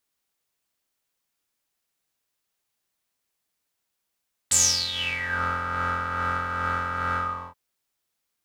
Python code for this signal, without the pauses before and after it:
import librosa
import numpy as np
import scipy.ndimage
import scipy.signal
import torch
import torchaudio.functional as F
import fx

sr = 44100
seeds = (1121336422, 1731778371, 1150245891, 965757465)

y = fx.sub_patch_tremolo(sr, seeds[0], note=41, wave='triangle', wave2='square', interval_st=12, detune_cents=16, level2_db=-17.5, sub_db=-17.0, noise_db=-30, kind='bandpass', cutoff_hz=1000.0, q=11.0, env_oct=3.0, env_decay_s=0.89, env_sustain_pct=15, attack_ms=12.0, decay_s=0.39, sustain_db=-14.0, release_s=0.37, note_s=2.66, lfo_hz=2.4, tremolo_db=4.0)